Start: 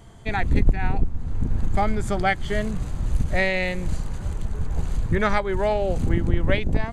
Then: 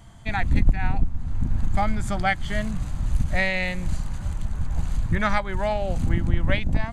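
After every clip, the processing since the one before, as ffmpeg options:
-af "equalizer=f=420:w=2.7:g=-14"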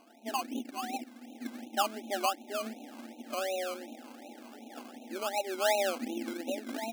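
-af "alimiter=limit=-16.5dB:level=0:latency=1:release=31,afftfilt=real='re*between(b*sr/4096,220,890)':imag='im*between(b*sr/4096,220,890)':win_size=4096:overlap=0.75,acrusher=samples=19:mix=1:aa=0.000001:lfo=1:lforange=11.4:lforate=2.7"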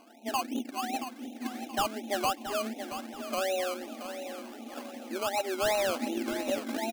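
-filter_complex "[0:a]volume=28dB,asoftclip=hard,volume=-28dB,asplit=2[a][b];[b]aecho=0:1:676|1352|2028|2704:0.316|0.12|0.0457|0.0174[c];[a][c]amix=inputs=2:normalize=0,volume=3.5dB"

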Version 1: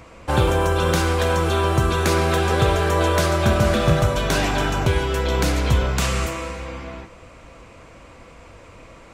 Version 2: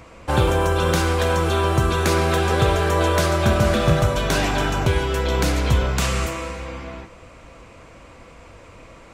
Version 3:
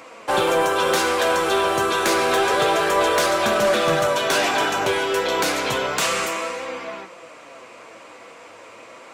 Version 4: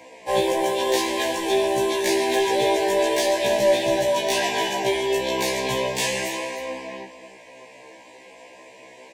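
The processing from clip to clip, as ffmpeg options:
-af anull
-af "highpass=390,flanger=delay=3.6:depth=7.2:regen=64:speed=0.3:shape=triangular,asoftclip=type=tanh:threshold=-20.5dB,volume=9dB"
-af "asuperstop=centerf=1300:order=20:qfactor=2.4,aecho=1:1:312:0.224,afftfilt=real='re*1.73*eq(mod(b,3),0)':imag='im*1.73*eq(mod(b,3),0)':win_size=2048:overlap=0.75"

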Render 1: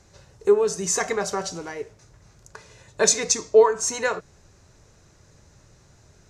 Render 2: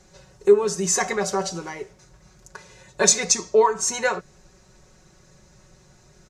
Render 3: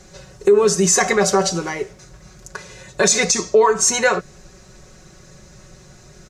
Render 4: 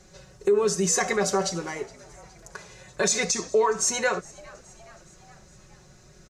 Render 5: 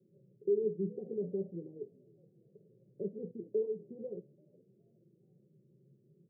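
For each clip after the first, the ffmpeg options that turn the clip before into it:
-af "aecho=1:1:5.4:0.74"
-af "equalizer=f=900:t=o:w=0.21:g=-6,alimiter=level_in=13.5dB:limit=-1dB:release=50:level=0:latency=1,volume=-4.5dB"
-filter_complex "[0:a]asplit=5[a][b][c][d][e];[b]adelay=417,afreqshift=81,volume=-23.5dB[f];[c]adelay=834,afreqshift=162,volume=-28.1dB[g];[d]adelay=1251,afreqshift=243,volume=-32.7dB[h];[e]adelay=1668,afreqshift=324,volume=-37.2dB[i];[a][f][g][h][i]amix=inputs=5:normalize=0,volume=-8dB"
-af "flanger=delay=8:depth=7.1:regen=79:speed=0.6:shape=triangular,asuperpass=centerf=240:order=12:qfactor=0.66,volume=-5.5dB"

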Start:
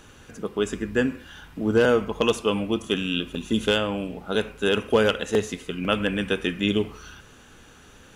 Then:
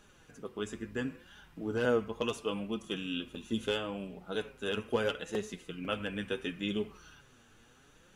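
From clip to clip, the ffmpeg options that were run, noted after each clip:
-af "flanger=delay=4.7:depth=4.6:regen=37:speed=0.73:shape=triangular,volume=-7.5dB"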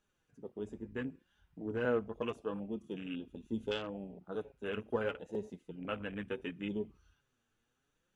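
-af "afwtdn=0.01,volume=-3.5dB"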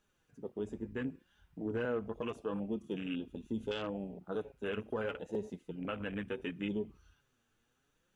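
-af "alimiter=level_in=6.5dB:limit=-24dB:level=0:latency=1:release=78,volume=-6.5dB,volume=3.5dB"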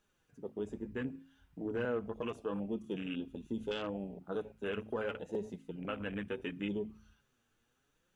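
-af "bandreject=f=53.92:t=h:w=4,bandreject=f=107.84:t=h:w=4,bandreject=f=161.76:t=h:w=4,bandreject=f=215.68:t=h:w=4,bandreject=f=269.6:t=h:w=4"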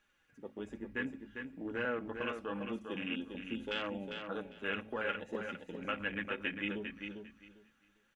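-filter_complex "[0:a]equalizer=f=2k:t=o:w=1.6:g=12.5,aecho=1:1:3.6:0.34,asplit=2[a][b];[b]aecho=0:1:400|800|1200:0.473|0.0899|0.0171[c];[a][c]amix=inputs=2:normalize=0,volume=-4dB"

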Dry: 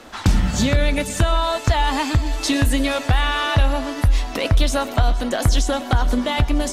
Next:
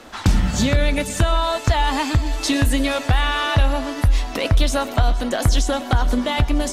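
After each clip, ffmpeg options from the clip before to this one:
-af anull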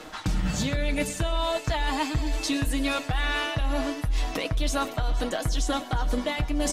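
-af "aecho=1:1:6.4:0.51,areverse,acompressor=threshold=-23dB:ratio=6,areverse"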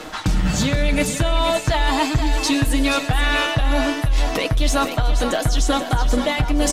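-filter_complex "[0:a]asplit=2[a][b];[b]asoftclip=type=tanh:threshold=-25dB,volume=-8dB[c];[a][c]amix=inputs=2:normalize=0,aecho=1:1:480:0.355,volume=5.5dB"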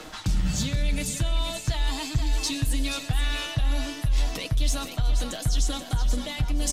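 -filter_complex "[0:a]acrossover=split=190|3000[a][b][c];[b]acompressor=threshold=-41dB:ratio=2[d];[a][d][c]amix=inputs=3:normalize=0,volume=-4.5dB"

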